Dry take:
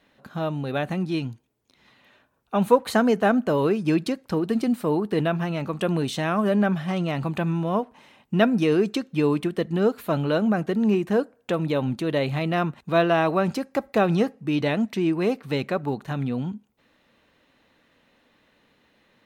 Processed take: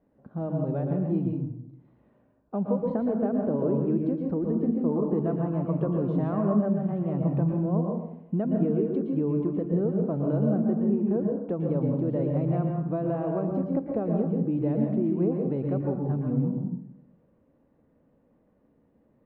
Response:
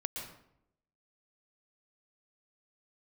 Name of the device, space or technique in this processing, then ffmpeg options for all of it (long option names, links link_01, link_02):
television next door: -filter_complex "[0:a]acompressor=threshold=-22dB:ratio=5,lowpass=550[link_01];[1:a]atrim=start_sample=2205[link_02];[link_01][link_02]afir=irnorm=-1:irlink=0,asettb=1/sr,asplit=3[link_03][link_04][link_05];[link_03]atrim=end=4.894[link_06];[link_04]atrim=start=4.89:end=6.66,asetpts=PTS-STARTPTS,afade=type=in:duration=0.004:curve=qsin,afade=type=out:start_time=1.766:duration=0.004:curve=qsin,equalizer=frequency=1100:width_type=o:width=0.71:gain=6[link_07];[link_05]atrim=start=6.656[link_08];[link_06][link_07]acrossfade=duration=0.004:curve1=hsin:curve2=qsin[link_09];[link_09][link_08]acrossfade=duration=0.004:curve1=qsin:curve2=hsin"